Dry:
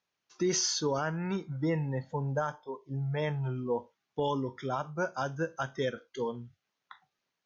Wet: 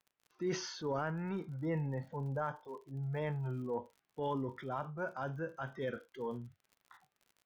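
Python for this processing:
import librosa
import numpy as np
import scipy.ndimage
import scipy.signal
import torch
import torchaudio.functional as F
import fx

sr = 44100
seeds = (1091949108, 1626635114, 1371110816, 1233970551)

y = scipy.signal.sosfilt(scipy.signal.butter(2, 2500.0, 'lowpass', fs=sr, output='sos'), x)
y = fx.transient(y, sr, attack_db=-5, sustain_db=5)
y = fx.dmg_crackle(y, sr, seeds[0], per_s=55.0, level_db=-47.0)
y = y * librosa.db_to_amplitude(-5.0)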